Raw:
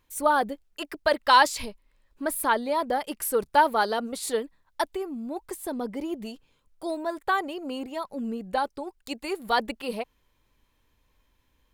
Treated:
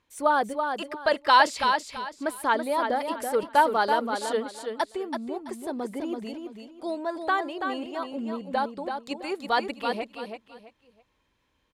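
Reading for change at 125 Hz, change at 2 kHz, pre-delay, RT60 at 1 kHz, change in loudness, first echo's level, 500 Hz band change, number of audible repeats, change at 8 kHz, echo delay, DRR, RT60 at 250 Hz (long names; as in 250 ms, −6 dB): can't be measured, +0.5 dB, no reverb audible, no reverb audible, 0.0 dB, −6.0 dB, +0.5 dB, 3, −6.0 dB, 331 ms, no reverb audible, no reverb audible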